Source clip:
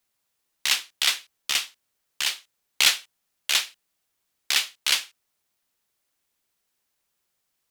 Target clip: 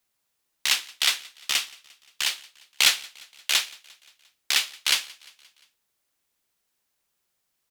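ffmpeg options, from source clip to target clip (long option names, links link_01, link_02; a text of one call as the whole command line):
ffmpeg -i in.wav -af "aecho=1:1:175|350|525|700:0.0631|0.0366|0.0212|0.0123" out.wav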